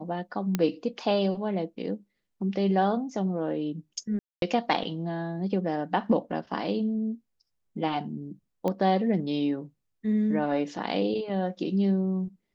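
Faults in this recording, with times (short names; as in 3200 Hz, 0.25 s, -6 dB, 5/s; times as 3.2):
0.55 pop -12 dBFS
4.19–4.42 gap 0.232 s
8.68 pop -17 dBFS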